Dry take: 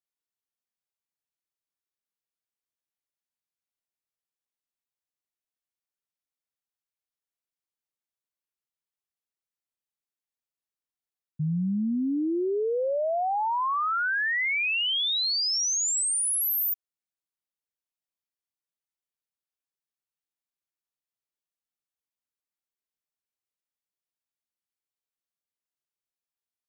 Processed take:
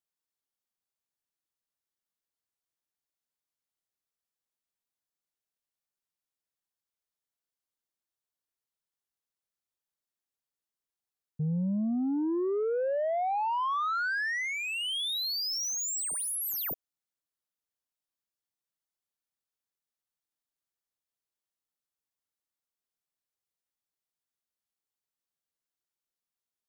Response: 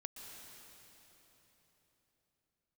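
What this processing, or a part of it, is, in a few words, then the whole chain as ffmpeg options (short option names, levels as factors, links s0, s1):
saturation between pre-emphasis and de-emphasis: -af "highshelf=f=2900:g=7.5,asoftclip=type=tanh:threshold=0.0562,equalizer=f=2400:t=o:w=0.56:g=-4,highshelf=f=2900:g=-7.5"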